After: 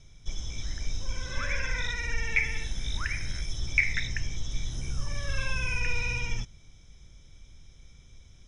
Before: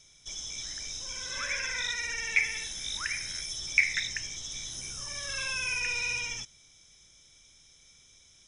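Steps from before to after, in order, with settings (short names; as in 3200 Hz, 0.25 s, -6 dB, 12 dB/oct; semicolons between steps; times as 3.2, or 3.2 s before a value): RIAA curve playback; gain +2.5 dB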